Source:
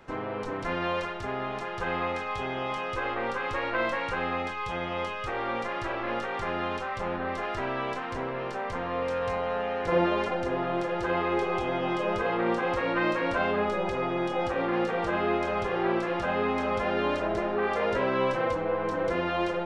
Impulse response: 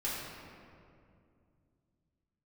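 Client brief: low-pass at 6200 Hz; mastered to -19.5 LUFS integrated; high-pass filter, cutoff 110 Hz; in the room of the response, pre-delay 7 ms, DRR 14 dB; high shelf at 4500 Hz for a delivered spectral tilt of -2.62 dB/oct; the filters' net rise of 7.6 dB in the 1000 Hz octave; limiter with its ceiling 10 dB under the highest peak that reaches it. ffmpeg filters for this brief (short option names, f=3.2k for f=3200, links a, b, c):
-filter_complex "[0:a]highpass=110,lowpass=6.2k,equalizer=f=1k:t=o:g=9,highshelf=f=4.5k:g=8.5,alimiter=limit=-19dB:level=0:latency=1,asplit=2[a][b];[1:a]atrim=start_sample=2205,adelay=7[c];[b][c]afir=irnorm=-1:irlink=0,volume=-19dB[d];[a][d]amix=inputs=2:normalize=0,volume=8dB"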